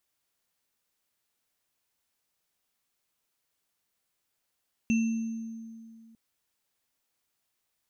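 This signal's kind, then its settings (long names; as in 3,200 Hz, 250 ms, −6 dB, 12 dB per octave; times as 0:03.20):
inharmonic partials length 1.25 s, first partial 226 Hz, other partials 2,680/6,290 Hz, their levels −10.5/−20 dB, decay 2.36 s, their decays 0.74/1.65 s, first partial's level −21 dB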